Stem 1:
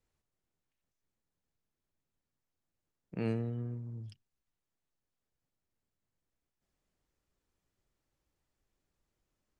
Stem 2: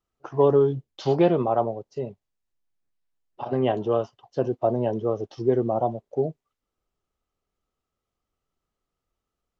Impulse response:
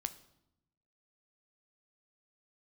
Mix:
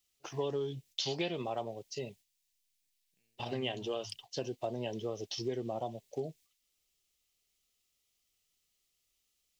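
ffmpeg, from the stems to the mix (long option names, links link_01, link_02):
-filter_complex "[0:a]acompressor=threshold=-41dB:ratio=6,volume=-1.5dB[link_01];[1:a]volume=-8.5dB,asplit=2[link_02][link_03];[link_03]apad=whole_len=423042[link_04];[link_01][link_04]sidechaingate=range=-39dB:threshold=-56dB:ratio=16:detection=peak[link_05];[link_05][link_02]amix=inputs=2:normalize=0,aexciter=amount=6.6:drive=7.3:freq=2000,acompressor=threshold=-34dB:ratio=3"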